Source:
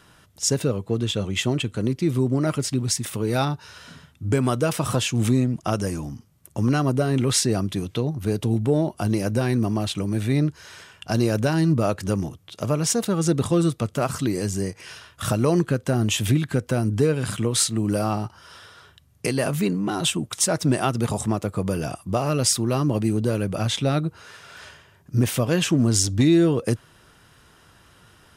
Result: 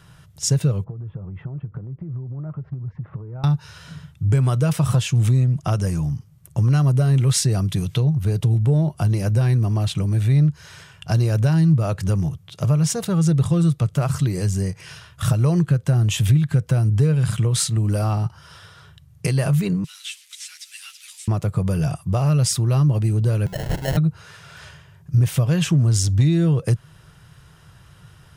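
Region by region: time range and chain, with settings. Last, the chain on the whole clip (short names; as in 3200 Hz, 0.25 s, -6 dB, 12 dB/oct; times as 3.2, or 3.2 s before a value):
0.84–3.44 LPF 1300 Hz 24 dB/oct + compressor 8:1, threshold -35 dBFS
6.73–8.04 high shelf 4800 Hz +4.5 dB + mismatched tape noise reduction encoder only
19.84–21.28 delta modulation 64 kbps, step -34 dBFS + inverse Chebyshev high-pass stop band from 510 Hz, stop band 70 dB + ensemble effect
23.46–23.97 HPF 370 Hz + sample-rate reducer 1200 Hz
whole clip: resonant low shelf 190 Hz +7 dB, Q 3; compressor 2:1, threshold -17 dBFS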